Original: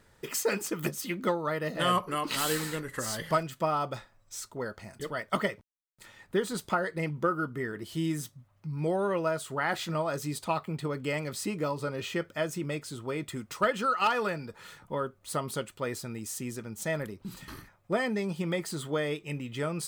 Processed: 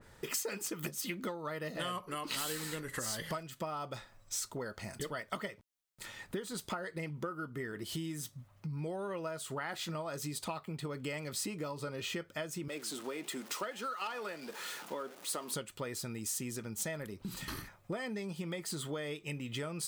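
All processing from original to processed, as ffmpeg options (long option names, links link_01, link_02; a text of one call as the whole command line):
ffmpeg -i in.wav -filter_complex "[0:a]asettb=1/sr,asplit=3[link_01][link_02][link_03];[link_01]atrim=end=12.684[link_04];[link_02]atrim=start=12.68:end=15.53,asetpts=PTS-STARTPTS,afade=type=in:duration=0.004:curve=qsin,afade=type=out:start_time=2.846:duration=0.004:curve=qsin,aeval=exprs='val(0)+0.5*0.00708*sgn(val(0))':channel_layout=same,highpass=frequency=230:width=0.5412,highpass=frequency=230:width=1.3066,flanger=delay=4.4:depth=7.8:regen=90:speed=1.6:shape=triangular[link_05];[link_03]atrim=start=15.526[link_06];[link_04][link_05]acrossfade=duration=0.004:curve1=hsin:curve2=qsin[link_07];[link_07][link_06]acrossfade=duration=0.004:curve1=qsin:curve2=hsin,acompressor=threshold=-41dB:ratio=6,adynamicequalizer=threshold=0.00126:dfrequency=2300:dqfactor=0.7:tfrequency=2300:tqfactor=0.7:attack=5:release=100:ratio=0.375:range=2:mode=boostabove:tftype=highshelf,volume=3.5dB" out.wav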